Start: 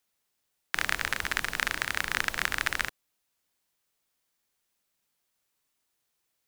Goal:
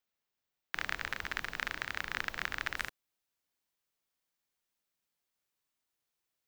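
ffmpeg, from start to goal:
-af "asetnsamples=n=441:p=0,asendcmd='2.77 equalizer g -3',equalizer=f=10k:t=o:w=1:g=-12.5,volume=-7dB"

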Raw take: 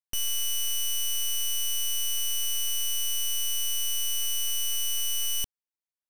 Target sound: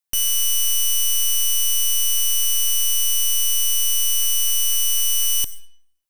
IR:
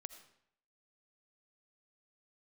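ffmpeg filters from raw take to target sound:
-filter_complex "[0:a]asplit=2[a][b];[1:a]atrim=start_sample=2205,lowshelf=f=450:g=-7,highshelf=f=6.3k:g=11[c];[b][c]afir=irnorm=-1:irlink=0,volume=3.5dB[d];[a][d]amix=inputs=2:normalize=0,volume=1.5dB"

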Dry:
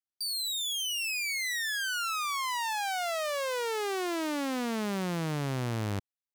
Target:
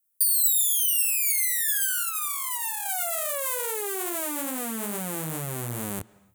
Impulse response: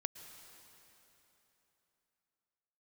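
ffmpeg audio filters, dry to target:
-filter_complex "[0:a]asettb=1/sr,asplit=3[a][b][c];[a]atrim=end=2.034[d];[b]atrim=start=2.03:end=2.86,asetpts=PTS-STARTPTS,afade=t=in:d=0.004:c=qsin,afade=t=out:st=0.826:d=0.004:c=qsin,highpass=f=530:w=0.5412,highpass=f=530:w=1.3066[e];[c]atrim=start=2.856[f];[d][e]acrossfade=d=0.004:c1=hsin:c2=qsin[g];[g][f]acrossfade=d=0.004:c1=qsin:c2=hsin,flanger=delay=22.5:depth=3.9:speed=2.4,alimiter=level_in=10dB:limit=-24dB:level=0:latency=1:release=43,volume=-10dB,aexciter=amount=14.3:drive=3.2:freq=7.4k,asplit=2[h][i];[1:a]atrim=start_sample=2205,afade=t=out:st=0.37:d=0.01,atrim=end_sample=16758,lowpass=5.3k[j];[i][j]afir=irnorm=-1:irlink=0,volume=-7.5dB[k];[h][k]amix=inputs=2:normalize=0,volume=4dB"

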